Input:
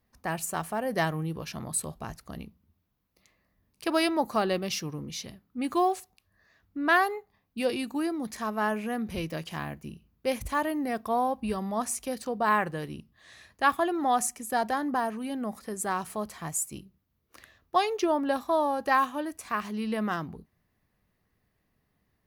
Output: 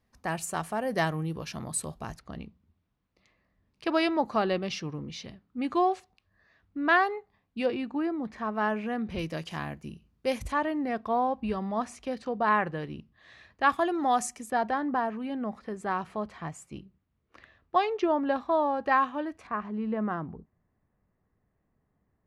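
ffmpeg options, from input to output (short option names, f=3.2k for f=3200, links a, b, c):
-af "asetnsamples=n=441:p=0,asendcmd='2.19 lowpass f 4000;7.66 lowpass f 2200;8.55 lowpass f 3800;9.19 lowpass f 8300;10.52 lowpass f 3500;13.69 lowpass f 7100;14.5 lowpass f 2900;19.47 lowpass f 1300',lowpass=9.7k"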